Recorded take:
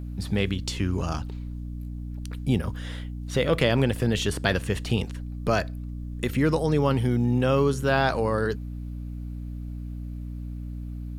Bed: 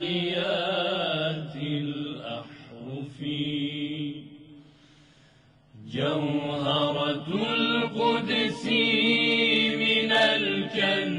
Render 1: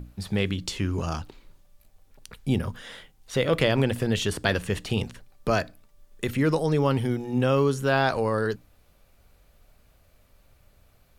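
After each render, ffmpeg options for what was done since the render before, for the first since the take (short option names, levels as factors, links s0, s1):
-af "bandreject=f=60:t=h:w=6,bandreject=f=120:t=h:w=6,bandreject=f=180:t=h:w=6,bandreject=f=240:t=h:w=6,bandreject=f=300:t=h:w=6"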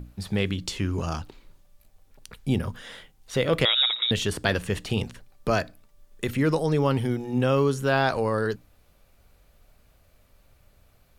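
-filter_complex "[0:a]asettb=1/sr,asplit=3[s0][s1][s2];[s0]atrim=end=3.654[s3];[s1]atrim=start=3.65:end=4.11,asetpts=PTS-STARTPTS,afade=t=in:d=0.004:c=qsin,afade=t=out:st=0.456:d=0.004:c=qsin,lowpass=f=3300:t=q:w=0.5098,lowpass=f=3300:t=q:w=0.6013,lowpass=f=3300:t=q:w=0.9,lowpass=f=3300:t=q:w=2.563,afreqshift=-3900[s4];[s2]atrim=start=4.106[s5];[s3][s4]acrossfade=d=0.004:c1=hsin:c2=qsin[s6];[s6][s5]acrossfade=d=0.004:c1=qsin:c2=hsin"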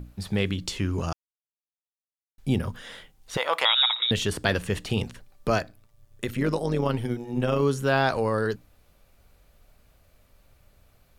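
-filter_complex "[0:a]asettb=1/sr,asplit=3[s0][s1][s2];[s0]atrim=end=3.374[s3];[s1]atrim=start=3.37:end=3.99,asetpts=PTS-STARTPTS,afade=t=in:d=0.004:c=qsin,afade=t=out:st=0.616:d=0.004:c=qsin,highpass=f=890:t=q:w=3.9[s4];[s2]atrim=start=3.986[s5];[s3][s4]acrossfade=d=0.004:c1=hsin:c2=qsin[s6];[s6][s5]acrossfade=d=0.004:c1=qsin:c2=hsin,asplit=3[s7][s8][s9];[s7]afade=t=out:st=5.57:d=0.02[s10];[s8]tremolo=f=110:d=0.621,afade=t=in:st=5.57:d=0.02,afade=t=out:st=7.61:d=0.02[s11];[s9]afade=t=in:st=7.61:d=0.02[s12];[s10][s11][s12]amix=inputs=3:normalize=0,asplit=3[s13][s14][s15];[s13]atrim=end=1.13,asetpts=PTS-STARTPTS,afade=t=out:st=1.126:d=0.004:c=hsin[s16];[s14]atrim=start=1.13:end=2.38,asetpts=PTS-STARTPTS,volume=0[s17];[s15]atrim=start=2.38,asetpts=PTS-STARTPTS,afade=t=in:d=0.004:c=hsin[s18];[s16][s17][s18]concat=n=3:v=0:a=1"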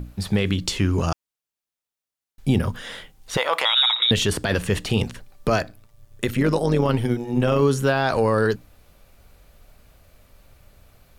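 -af "alimiter=limit=0.168:level=0:latency=1:release=31,acontrast=69"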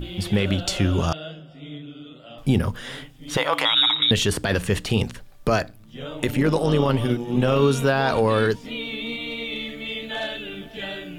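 -filter_complex "[1:a]volume=0.398[s0];[0:a][s0]amix=inputs=2:normalize=0"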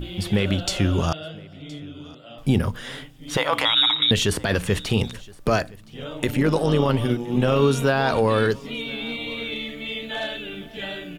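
-af "aecho=1:1:1018:0.0631"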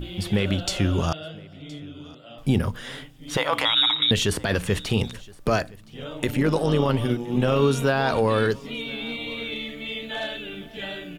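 -af "volume=0.841"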